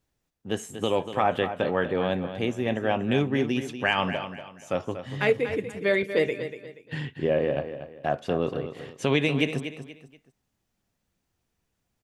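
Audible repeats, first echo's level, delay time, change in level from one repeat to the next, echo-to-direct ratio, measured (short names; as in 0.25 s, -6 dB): 3, -10.5 dB, 0.239 s, -10.0 dB, -10.0 dB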